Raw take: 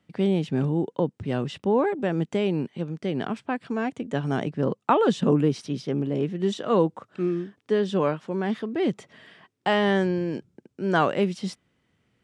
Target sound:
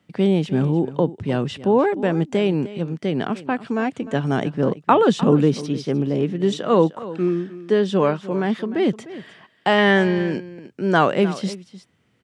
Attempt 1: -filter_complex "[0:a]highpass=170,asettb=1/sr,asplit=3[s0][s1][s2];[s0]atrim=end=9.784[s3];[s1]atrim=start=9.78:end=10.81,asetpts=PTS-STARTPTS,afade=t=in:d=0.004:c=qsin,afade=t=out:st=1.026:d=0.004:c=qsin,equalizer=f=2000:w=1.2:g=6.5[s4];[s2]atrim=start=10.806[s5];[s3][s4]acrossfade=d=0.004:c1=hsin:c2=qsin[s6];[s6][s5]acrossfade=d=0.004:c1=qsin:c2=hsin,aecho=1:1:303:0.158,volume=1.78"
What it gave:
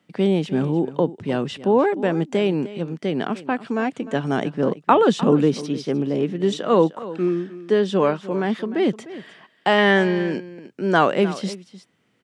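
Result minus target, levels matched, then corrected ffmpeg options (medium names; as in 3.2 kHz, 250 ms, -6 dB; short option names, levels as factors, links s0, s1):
125 Hz band -3.0 dB
-filter_complex "[0:a]highpass=67,asettb=1/sr,asplit=3[s0][s1][s2];[s0]atrim=end=9.784[s3];[s1]atrim=start=9.78:end=10.81,asetpts=PTS-STARTPTS,afade=t=in:d=0.004:c=qsin,afade=t=out:st=1.026:d=0.004:c=qsin,equalizer=f=2000:w=1.2:g=6.5[s4];[s2]atrim=start=10.806[s5];[s3][s4]acrossfade=d=0.004:c1=hsin:c2=qsin[s6];[s6][s5]acrossfade=d=0.004:c1=qsin:c2=hsin,aecho=1:1:303:0.158,volume=1.78"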